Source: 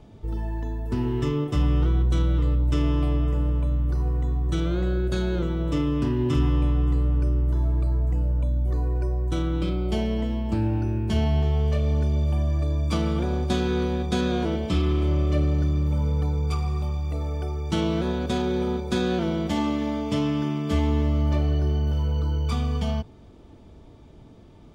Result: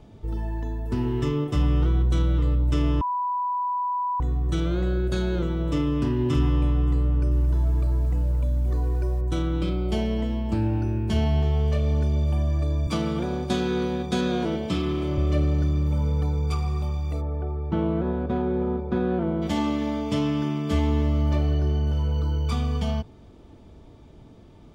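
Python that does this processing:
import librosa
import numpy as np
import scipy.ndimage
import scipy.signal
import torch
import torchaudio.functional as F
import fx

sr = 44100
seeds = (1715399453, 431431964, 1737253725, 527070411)

y = fx.echo_crushed(x, sr, ms=224, feedback_pct=55, bits=8, wet_db=-11, at=(7.09, 9.21))
y = fx.highpass(y, sr, hz=92.0, slope=24, at=(12.87, 15.18))
y = fx.lowpass(y, sr, hz=1300.0, slope=12, at=(17.2, 19.41), fade=0.02)
y = fx.resample_linear(y, sr, factor=2, at=(21.54, 22.12))
y = fx.edit(y, sr, fx.bleep(start_s=3.01, length_s=1.19, hz=987.0, db=-23.0), tone=tone)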